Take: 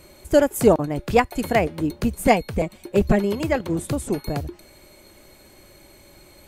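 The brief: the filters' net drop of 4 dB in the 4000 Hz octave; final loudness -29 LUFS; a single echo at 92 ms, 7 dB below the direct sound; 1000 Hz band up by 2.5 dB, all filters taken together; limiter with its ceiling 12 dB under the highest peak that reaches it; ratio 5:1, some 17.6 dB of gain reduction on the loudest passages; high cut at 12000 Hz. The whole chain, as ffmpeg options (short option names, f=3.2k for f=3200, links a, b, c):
-af "lowpass=12k,equalizer=f=1k:t=o:g=4,equalizer=f=4k:t=o:g=-6,acompressor=threshold=-30dB:ratio=5,alimiter=level_in=6.5dB:limit=-24dB:level=0:latency=1,volume=-6.5dB,aecho=1:1:92:0.447,volume=11.5dB"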